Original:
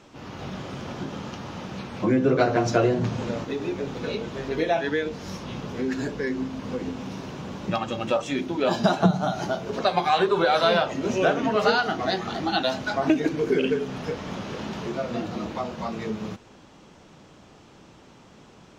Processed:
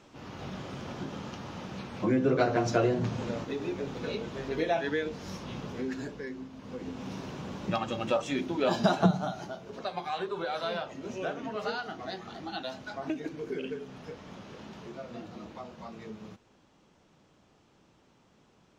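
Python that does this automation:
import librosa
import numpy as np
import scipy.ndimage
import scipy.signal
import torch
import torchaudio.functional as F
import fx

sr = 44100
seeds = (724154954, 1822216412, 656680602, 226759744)

y = fx.gain(x, sr, db=fx.line((5.67, -5.0), (6.5, -14.0), (7.1, -4.0), (9.09, -4.0), (9.5, -13.0)))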